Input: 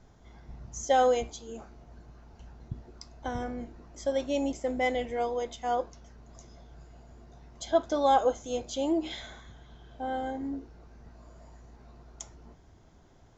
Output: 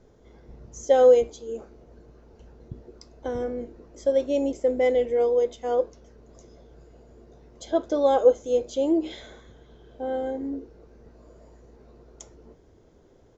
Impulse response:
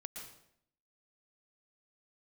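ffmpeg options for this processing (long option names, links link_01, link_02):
-af "firequalizer=gain_entry='entry(150,0);entry(480,13);entry(700,-1)':delay=0.05:min_phase=1,volume=-1.5dB"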